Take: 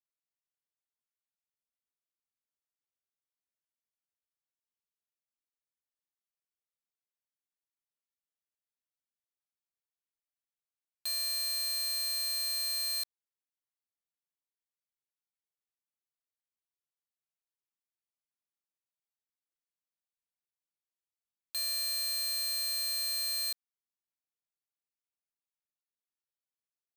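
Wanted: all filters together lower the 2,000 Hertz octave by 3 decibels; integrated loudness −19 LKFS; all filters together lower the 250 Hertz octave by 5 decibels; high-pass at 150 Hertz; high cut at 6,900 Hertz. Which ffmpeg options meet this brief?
ffmpeg -i in.wav -af "highpass=150,lowpass=6900,equalizer=frequency=250:width_type=o:gain=-5.5,equalizer=frequency=2000:width_type=o:gain=-3.5,volume=14.5dB" out.wav

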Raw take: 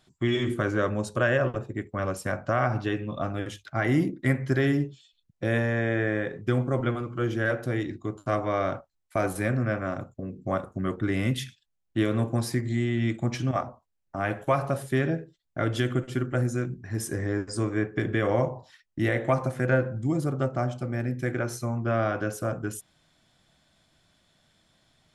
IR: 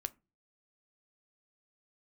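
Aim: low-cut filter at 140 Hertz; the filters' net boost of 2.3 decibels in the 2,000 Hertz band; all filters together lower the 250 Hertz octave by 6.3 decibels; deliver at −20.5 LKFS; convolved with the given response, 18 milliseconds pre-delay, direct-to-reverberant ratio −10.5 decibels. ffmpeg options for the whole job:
-filter_complex "[0:a]highpass=140,equalizer=frequency=250:width_type=o:gain=-8,equalizer=frequency=2000:width_type=o:gain=3,asplit=2[link_01][link_02];[1:a]atrim=start_sample=2205,adelay=18[link_03];[link_02][link_03]afir=irnorm=-1:irlink=0,volume=12dB[link_04];[link_01][link_04]amix=inputs=2:normalize=0,volume=-1dB"

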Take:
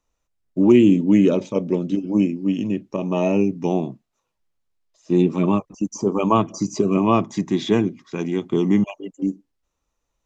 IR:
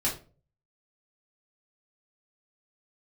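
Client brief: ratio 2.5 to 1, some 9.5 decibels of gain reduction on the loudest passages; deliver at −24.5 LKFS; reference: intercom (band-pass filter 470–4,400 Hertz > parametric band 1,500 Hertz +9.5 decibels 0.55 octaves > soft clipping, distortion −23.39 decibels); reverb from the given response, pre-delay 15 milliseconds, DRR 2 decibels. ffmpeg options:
-filter_complex "[0:a]acompressor=threshold=-24dB:ratio=2.5,asplit=2[link_01][link_02];[1:a]atrim=start_sample=2205,adelay=15[link_03];[link_02][link_03]afir=irnorm=-1:irlink=0,volume=-9.5dB[link_04];[link_01][link_04]amix=inputs=2:normalize=0,highpass=470,lowpass=4400,equalizer=frequency=1500:width_type=o:width=0.55:gain=9.5,asoftclip=threshold=-13dB,volume=6.5dB"

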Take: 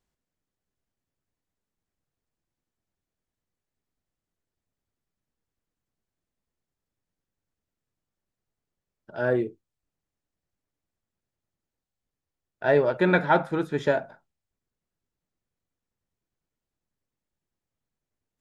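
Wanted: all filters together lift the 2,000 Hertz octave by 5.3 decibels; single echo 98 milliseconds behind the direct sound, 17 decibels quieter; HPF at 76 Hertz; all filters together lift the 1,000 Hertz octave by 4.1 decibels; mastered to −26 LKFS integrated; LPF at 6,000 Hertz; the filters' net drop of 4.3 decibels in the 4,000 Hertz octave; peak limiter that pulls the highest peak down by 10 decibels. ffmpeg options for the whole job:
ffmpeg -i in.wav -af "highpass=76,lowpass=6000,equalizer=frequency=1000:width_type=o:gain=4,equalizer=frequency=2000:width_type=o:gain=7,equalizer=frequency=4000:width_type=o:gain=-7.5,alimiter=limit=-14.5dB:level=0:latency=1,aecho=1:1:98:0.141,volume=0.5dB" out.wav

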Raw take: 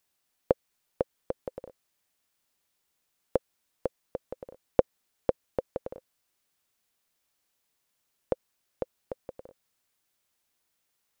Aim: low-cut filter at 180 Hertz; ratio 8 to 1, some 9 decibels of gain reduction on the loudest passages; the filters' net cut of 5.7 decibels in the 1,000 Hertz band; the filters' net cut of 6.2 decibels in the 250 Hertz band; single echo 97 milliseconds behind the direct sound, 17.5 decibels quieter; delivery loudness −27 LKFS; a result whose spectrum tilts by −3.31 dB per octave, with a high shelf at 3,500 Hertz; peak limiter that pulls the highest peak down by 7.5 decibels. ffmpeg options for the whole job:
ffmpeg -i in.wav -af "highpass=180,equalizer=frequency=250:width_type=o:gain=-7,equalizer=frequency=1000:width_type=o:gain=-7.5,highshelf=frequency=3500:gain=-6,acompressor=threshold=-30dB:ratio=8,alimiter=limit=-21.5dB:level=0:latency=1,aecho=1:1:97:0.133,volume=20dB" out.wav

